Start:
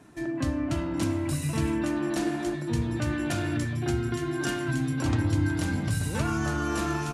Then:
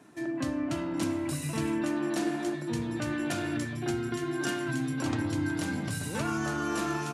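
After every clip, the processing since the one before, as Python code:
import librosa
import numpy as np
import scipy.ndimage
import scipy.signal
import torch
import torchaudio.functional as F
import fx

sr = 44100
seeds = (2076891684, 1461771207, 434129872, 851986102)

y = scipy.signal.sosfilt(scipy.signal.butter(2, 160.0, 'highpass', fs=sr, output='sos'), x)
y = y * 10.0 ** (-1.5 / 20.0)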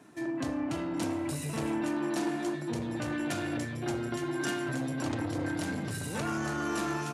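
y = fx.transformer_sat(x, sr, knee_hz=600.0)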